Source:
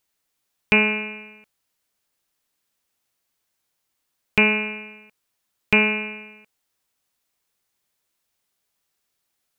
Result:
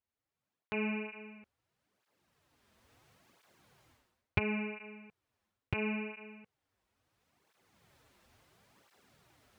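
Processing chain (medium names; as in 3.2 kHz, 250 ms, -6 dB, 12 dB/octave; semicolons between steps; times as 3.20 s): recorder AGC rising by 14 dB/s; low-pass 1.2 kHz 6 dB/octave; peaking EQ 94 Hz +6 dB 1.6 oct; reverse; compression 6:1, threshold -20 dBFS, peak gain reduction 24.5 dB; reverse; cancelling through-zero flanger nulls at 0.73 Hz, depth 7.3 ms; trim -8 dB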